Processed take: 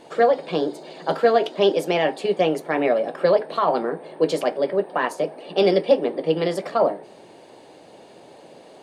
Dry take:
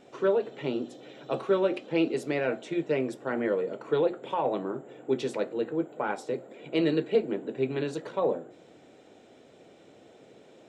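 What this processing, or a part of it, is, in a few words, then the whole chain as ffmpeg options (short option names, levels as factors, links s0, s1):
nightcore: -af "asetrate=53361,aresample=44100,volume=2.51"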